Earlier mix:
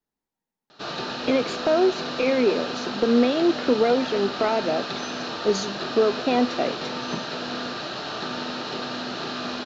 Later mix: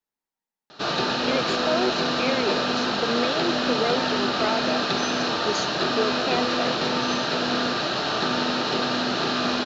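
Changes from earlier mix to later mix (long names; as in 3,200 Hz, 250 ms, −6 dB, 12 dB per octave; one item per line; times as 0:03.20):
speech: add low-shelf EQ 490 Hz −11.5 dB
background +6.5 dB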